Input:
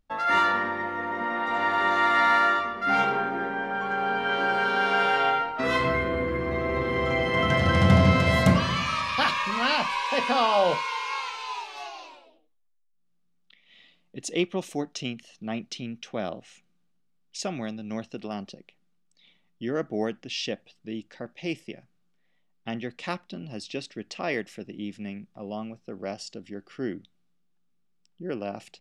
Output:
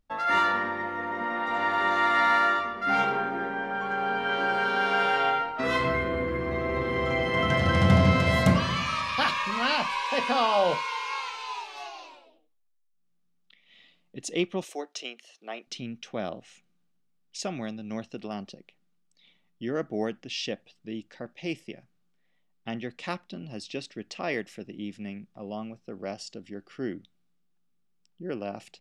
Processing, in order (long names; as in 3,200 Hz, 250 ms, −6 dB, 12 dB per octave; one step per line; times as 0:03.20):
0:14.64–0:15.67: high-pass filter 380 Hz 24 dB per octave
level −1.5 dB